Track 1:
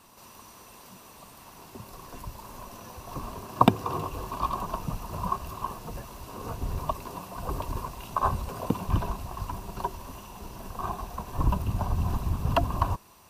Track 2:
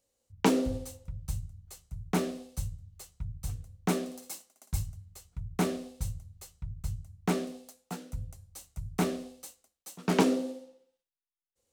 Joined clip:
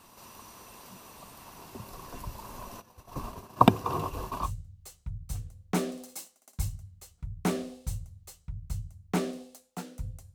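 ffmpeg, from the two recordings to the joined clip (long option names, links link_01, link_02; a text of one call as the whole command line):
ffmpeg -i cue0.wav -i cue1.wav -filter_complex "[0:a]asplit=3[link_01][link_02][link_03];[link_01]afade=type=out:start_time=2.8:duration=0.02[link_04];[link_02]agate=range=-33dB:threshold=-35dB:ratio=3:release=100:detection=peak,afade=type=in:start_time=2.8:duration=0.02,afade=type=out:start_time=4.51:duration=0.02[link_05];[link_03]afade=type=in:start_time=4.51:duration=0.02[link_06];[link_04][link_05][link_06]amix=inputs=3:normalize=0,apad=whole_dur=10.34,atrim=end=10.34,atrim=end=4.51,asetpts=PTS-STARTPTS[link_07];[1:a]atrim=start=2.53:end=8.48,asetpts=PTS-STARTPTS[link_08];[link_07][link_08]acrossfade=duration=0.12:curve1=tri:curve2=tri" out.wav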